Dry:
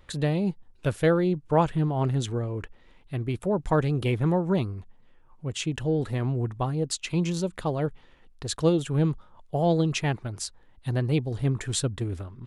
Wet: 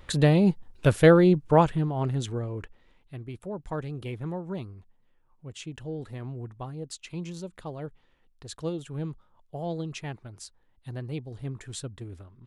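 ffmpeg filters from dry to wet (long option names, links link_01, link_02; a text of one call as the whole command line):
ffmpeg -i in.wav -af "volume=5.5dB,afade=type=out:start_time=1.32:duration=0.53:silence=0.398107,afade=type=out:start_time=2.54:duration=0.68:silence=0.421697" out.wav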